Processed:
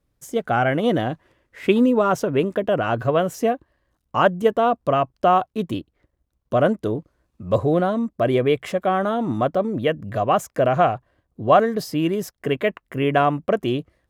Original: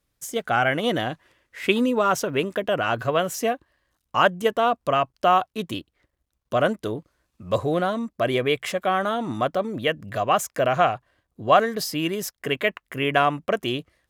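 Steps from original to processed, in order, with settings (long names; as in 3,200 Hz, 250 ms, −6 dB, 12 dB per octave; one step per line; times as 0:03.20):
tilt shelving filter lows +6 dB, about 1,100 Hz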